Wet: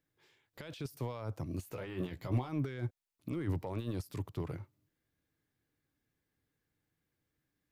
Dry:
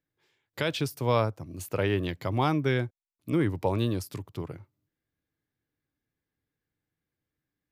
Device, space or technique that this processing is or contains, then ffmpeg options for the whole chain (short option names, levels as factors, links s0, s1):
de-esser from a sidechain: -filter_complex "[0:a]asplit=2[s0][s1];[s1]highpass=f=4200:p=1,apad=whole_len=340421[s2];[s0][s2]sidechaincompress=threshold=0.00224:ratio=12:attack=0.52:release=30,asettb=1/sr,asplit=3[s3][s4][s5];[s3]atrim=end=1.654[s6];[s4]atrim=start=1.65:end=2.49,asetpts=PTS-STARTPTS,afade=t=in:d=0.004:c=qsin,afade=t=out:st=0.836:d=0.004:c=qsin,asplit=2[s7][s8];[s8]adelay=16,volume=0.562[s9];[s7][s9]amix=inputs=2:normalize=0,atrim=end_sample=37044[s10];[s5]atrim=start=2.486[s11];[s6][s10]acrossfade=d=0.004:c1=hsin:c2=qsin[s12];[s12][s11]acrossfade=d=0.004:c1=qsin:c2=hsin,volume=1.33"